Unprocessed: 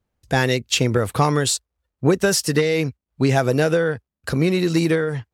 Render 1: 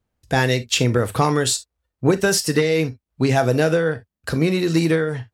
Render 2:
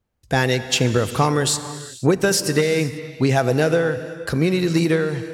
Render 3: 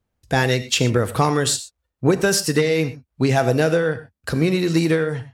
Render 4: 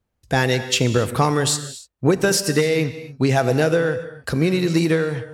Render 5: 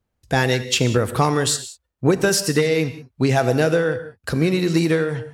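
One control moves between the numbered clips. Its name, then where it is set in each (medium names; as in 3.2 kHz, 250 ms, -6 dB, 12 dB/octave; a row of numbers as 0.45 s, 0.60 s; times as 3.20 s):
gated-style reverb, gate: 80 ms, 520 ms, 140 ms, 310 ms, 210 ms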